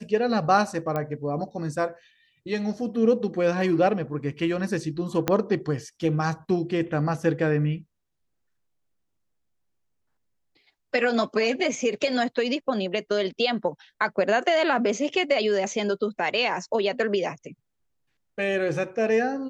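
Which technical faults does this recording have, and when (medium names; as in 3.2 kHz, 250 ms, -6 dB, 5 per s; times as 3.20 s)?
0.96 s: pop -16 dBFS
5.28 s: pop -8 dBFS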